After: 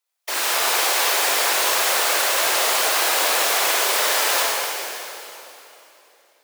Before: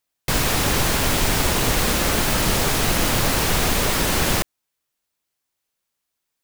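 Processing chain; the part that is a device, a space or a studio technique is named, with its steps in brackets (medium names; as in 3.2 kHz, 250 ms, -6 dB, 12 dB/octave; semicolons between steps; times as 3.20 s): whispering ghost (whisper effect; high-pass 510 Hz 24 dB/octave; reverberation RT60 3.2 s, pre-delay 27 ms, DRR -4 dB); trim -2.5 dB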